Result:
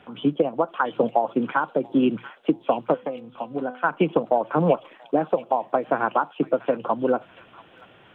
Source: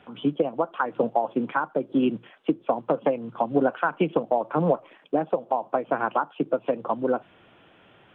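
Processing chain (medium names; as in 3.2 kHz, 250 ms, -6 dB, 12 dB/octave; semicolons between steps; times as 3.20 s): 2.94–3.84 s: feedback comb 250 Hz, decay 0.43 s, harmonics all, mix 70%; on a send: feedback echo behind a high-pass 686 ms, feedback 32%, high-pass 2.9 kHz, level -4 dB; on the sum: trim +2.5 dB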